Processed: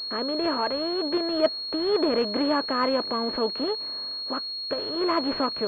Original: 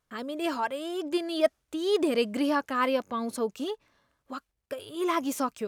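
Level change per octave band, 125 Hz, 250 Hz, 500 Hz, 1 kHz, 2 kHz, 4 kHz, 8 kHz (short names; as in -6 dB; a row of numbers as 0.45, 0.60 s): n/a, +2.5 dB, +3.0 dB, +2.5 dB, +0.5 dB, +12.0 dB, under -15 dB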